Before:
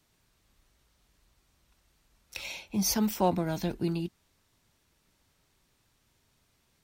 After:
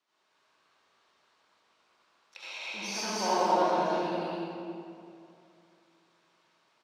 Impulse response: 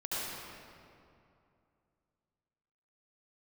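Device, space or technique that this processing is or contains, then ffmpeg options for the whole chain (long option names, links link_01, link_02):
station announcement: -filter_complex "[0:a]highpass=460,lowpass=4800,equalizer=frequency=1100:width_type=o:width=0.48:gain=5,aecho=1:1:207|288.6:0.794|0.562[link_01];[1:a]atrim=start_sample=2205[link_02];[link_01][link_02]afir=irnorm=-1:irlink=0,volume=-3dB"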